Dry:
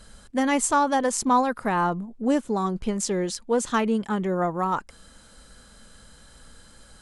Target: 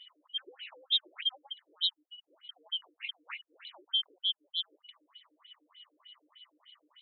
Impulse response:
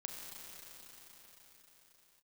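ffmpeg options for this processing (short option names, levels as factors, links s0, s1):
-af "afftfilt=real='real(if(lt(b,272),68*(eq(floor(b/68),0)*2+eq(floor(b/68),1)*3+eq(floor(b/68),2)*0+eq(floor(b/68),3)*1)+mod(b,68),b),0)':imag='imag(if(lt(b,272),68*(eq(floor(b/68),0)*2+eq(floor(b/68),1)*3+eq(floor(b/68),2)*0+eq(floor(b/68),3)*1)+mod(b,68),b),0)':win_size=2048:overlap=0.75,aeval=exprs='val(0)+0.00398*(sin(2*PI*60*n/s)+sin(2*PI*2*60*n/s)/2+sin(2*PI*3*60*n/s)/3+sin(2*PI*4*60*n/s)/4+sin(2*PI*5*60*n/s)/5)':c=same,afftfilt=real='re*between(b*sr/1024,380*pow(3000/380,0.5+0.5*sin(2*PI*3.3*pts/sr))/1.41,380*pow(3000/380,0.5+0.5*sin(2*PI*3.3*pts/sr))*1.41)':imag='im*between(b*sr/1024,380*pow(3000/380,0.5+0.5*sin(2*PI*3.3*pts/sr))/1.41,380*pow(3000/380,0.5+0.5*sin(2*PI*3.3*pts/sr))*1.41)':win_size=1024:overlap=0.75,volume=0.668"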